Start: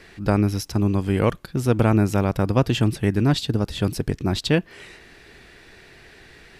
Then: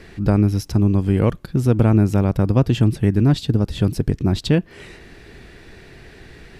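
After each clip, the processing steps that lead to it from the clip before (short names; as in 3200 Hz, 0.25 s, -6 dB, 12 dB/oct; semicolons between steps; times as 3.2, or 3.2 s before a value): low shelf 460 Hz +9.5 dB; in parallel at +2 dB: compressor, threshold -20 dBFS, peak gain reduction 14.5 dB; on the sum: gain -6.5 dB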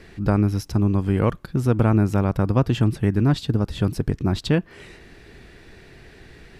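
dynamic EQ 1200 Hz, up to +6 dB, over -39 dBFS, Q 1; gain -3.5 dB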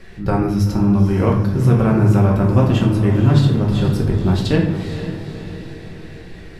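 flange 0.56 Hz, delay 1.6 ms, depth 2.2 ms, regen -69%; diffused feedback echo 0.479 s, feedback 55%, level -10 dB; shoebox room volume 180 m³, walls mixed, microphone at 1.1 m; gain +4.5 dB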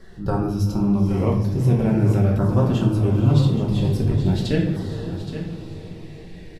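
flange 1.1 Hz, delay 4.5 ms, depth 4.1 ms, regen -69%; LFO notch saw down 0.42 Hz 980–2500 Hz; echo 0.821 s -11 dB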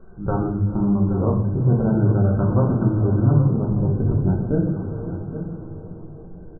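brick-wall FIR low-pass 1600 Hz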